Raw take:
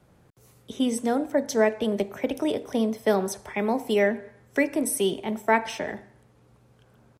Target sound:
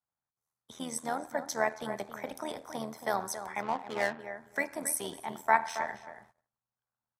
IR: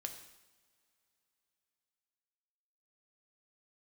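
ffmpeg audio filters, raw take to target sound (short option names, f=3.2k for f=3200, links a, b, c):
-filter_complex "[0:a]equalizer=f=2.8k:t=o:w=0.41:g=-14.5,asplit=2[a][b];[b]adelay=274,lowpass=f=2.1k:p=1,volume=-10dB,asplit=2[c][d];[d]adelay=274,lowpass=f=2.1k:p=1,volume=0.17[e];[a][c][e]amix=inputs=3:normalize=0,agate=range=-28dB:threshold=-50dB:ratio=16:detection=peak,tremolo=f=80:d=0.667,asplit=3[f][g][h];[f]afade=t=out:st=3.61:d=0.02[i];[g]adynamicsmooth=sensitivity=7:basefreq=550,afade=t=in:st=3.61:d=0.02,afade=t=out:st=4.19:d=0.02[j];[h]afade=t=in:st=4.19:d=0.02[k];[i][j][k]amix=inputs=3:normalize=0,lowshelf=f=620:t=q:w=1.5:g=-11.5"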